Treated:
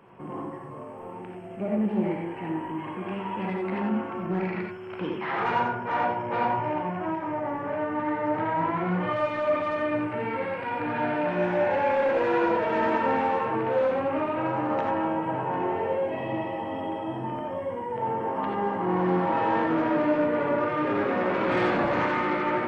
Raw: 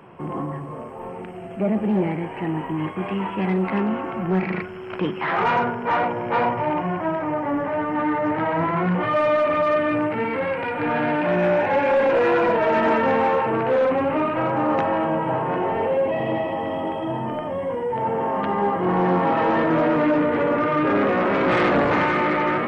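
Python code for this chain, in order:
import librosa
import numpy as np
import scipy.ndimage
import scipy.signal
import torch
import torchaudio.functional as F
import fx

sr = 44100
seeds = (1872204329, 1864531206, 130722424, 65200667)

y = fx.rev_gated(x, sr, seeds[0], gate_ms=110, shape='rising', drr_db=0.5)
y = y * 10.0 ** (-8.5 / 20.0)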